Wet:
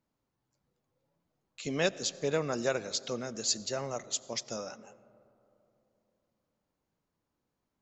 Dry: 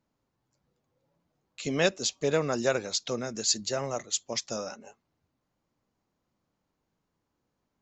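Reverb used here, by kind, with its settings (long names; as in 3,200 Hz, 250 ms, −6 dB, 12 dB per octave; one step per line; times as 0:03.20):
comb and all-pass reverb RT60 3.1 s, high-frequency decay 0.3×, pre-delay 50 ms, DRR 18 dB
level −4 dB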